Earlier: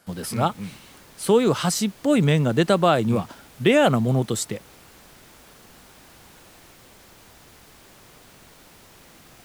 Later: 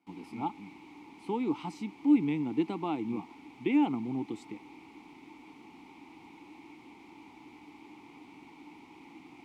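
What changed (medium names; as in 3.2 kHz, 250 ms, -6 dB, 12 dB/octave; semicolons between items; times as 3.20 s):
background +12.0 dB; master: add vowel filter u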